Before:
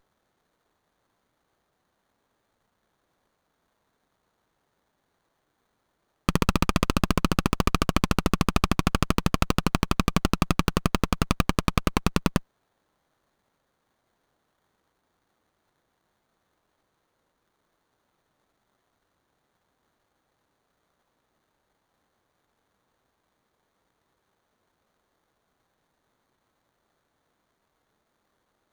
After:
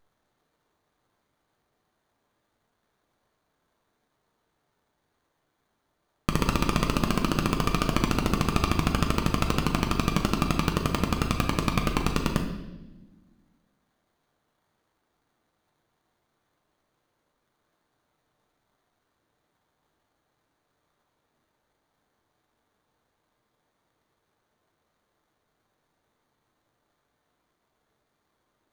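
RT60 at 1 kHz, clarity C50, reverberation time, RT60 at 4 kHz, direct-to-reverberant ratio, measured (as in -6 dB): 0.90 s, 7.0 dB, 1.1 s, 1.0 s, 2.5 dB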